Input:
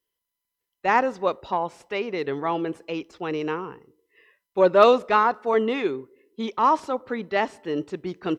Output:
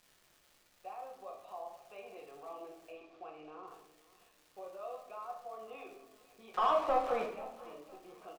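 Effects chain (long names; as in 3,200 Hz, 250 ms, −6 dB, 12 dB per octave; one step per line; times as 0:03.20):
downward compressor 2.5 to 1, threshold −33 dBFS, peak gain reduction 15.5 dB
brickwall limiter −27.5 dBFS, peak gain reduction 9.5 dB
formant filter a
surface crackle 420 per second −51 dBFS
0:02.92–0:03.67: high-frequency loss of the air 130 metres
0:06.54–0:07.26: mid-hump overdrive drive 33 dB, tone 1,100 Hz, clips at −16.5 dBFS
repeating echo 500 ms, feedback 36%, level −19 dB
rectangular room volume 140 cubic metres, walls mixed, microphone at 0.92 metres
level −3 dB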